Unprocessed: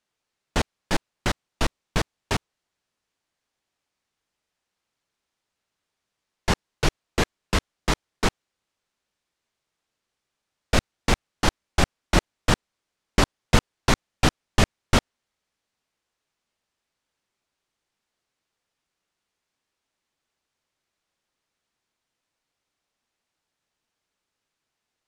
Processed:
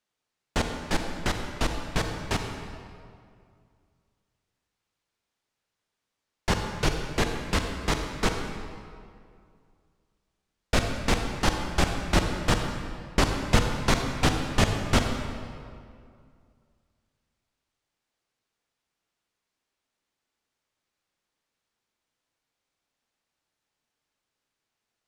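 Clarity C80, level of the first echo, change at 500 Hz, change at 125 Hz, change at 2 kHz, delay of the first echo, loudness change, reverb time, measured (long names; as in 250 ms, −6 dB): 5.5 dB, no echo audible, −1.5 dB, −1.0 dB, −1.5 dB, no echo audible, −2.0 dB, 2.3 s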